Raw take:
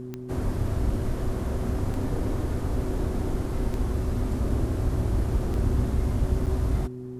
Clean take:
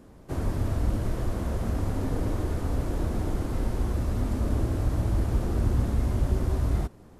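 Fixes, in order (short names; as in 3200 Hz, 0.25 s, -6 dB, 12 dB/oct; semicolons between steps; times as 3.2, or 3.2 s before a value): de-click; de-hum 125.5 Hz, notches 3; interpolate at 6.46, 6.1 ms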